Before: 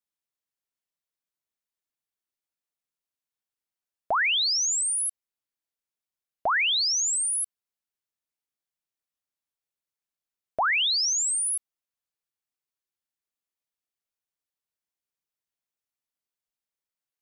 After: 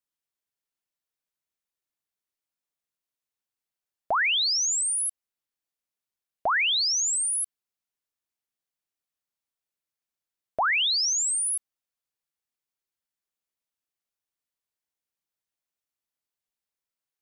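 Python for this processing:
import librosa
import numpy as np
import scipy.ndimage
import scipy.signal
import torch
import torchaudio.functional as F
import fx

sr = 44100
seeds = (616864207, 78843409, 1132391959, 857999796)

y = fx.low_shelf(x, sr, hz=130.0, db=11.5, at=(6.95, 7.43))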